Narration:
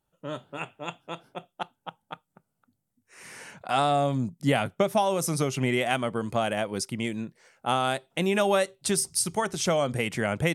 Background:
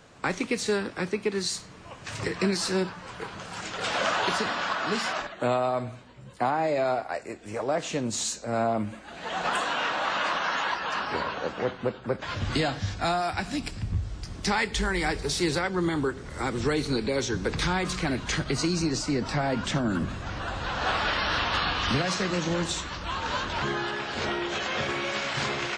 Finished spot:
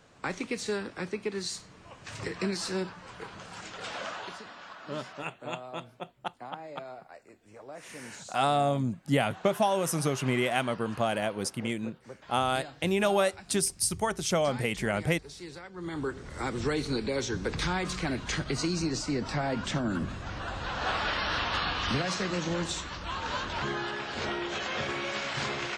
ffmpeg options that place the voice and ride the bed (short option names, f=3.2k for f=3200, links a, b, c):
-filter_complex "[0:a]adelay=4650,volume=-2dB[a];[1:a]volume=8.5dB,afade=t=out:st=3.44:d=0.97:silence=0.251189,afade=t=in:st=15.74:d=0.42:silence=0.199526[b];[a][b]amix=inputs=2:normalize=0"